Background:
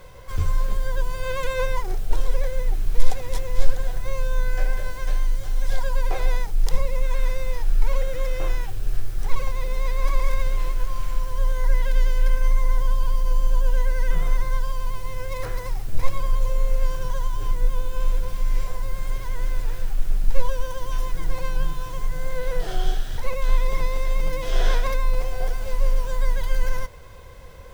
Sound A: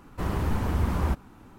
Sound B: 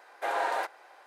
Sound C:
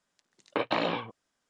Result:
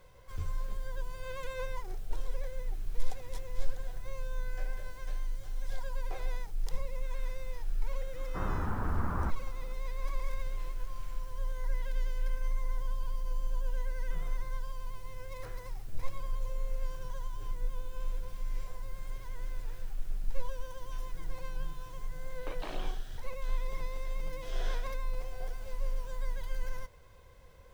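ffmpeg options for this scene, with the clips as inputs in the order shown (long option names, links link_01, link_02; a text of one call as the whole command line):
ffmpeg -i bed.wav -i cue0.wav -i cue1.wav -i cue2.wav -filter_complex "[0:a]volume=-13.5dB[link_01];[1:a]lowpass=frequency=1400:width_type=q:width=2.6,atrim=end=1.58,asetpts=PTS-STARTPTS,volume=-8.5dB,afade=type=in:duration=0.004:curve=hsin,afade=type=out:start_time=1.576:duration=0.004:curve=hsin,adelay=8160[link_02];[3:a]atrim=end=1.49,asetpts=PTS-STARTPTS,volume=-15.5dB,afade=type=in:duration=0.004:curve=hsin,afade=type=out:start_time=1.486:duration=0.004:curve=hsin,adelay=21910[link_03];[link_01][link_02][link_03]amix=inputs=3:normalize=0" out.wav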